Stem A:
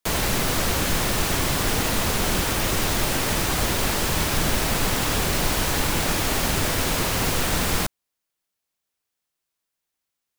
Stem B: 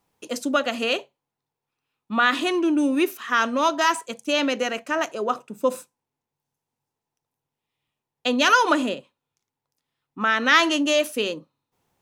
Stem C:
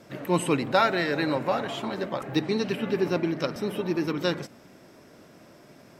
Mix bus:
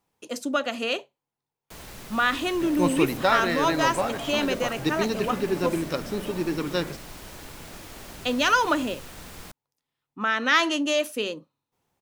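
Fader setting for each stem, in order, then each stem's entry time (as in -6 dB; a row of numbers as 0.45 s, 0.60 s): -19.5 dB, -3.5 dB, -0.5 dB; 1.65 s, 0.00 s, 2.50 s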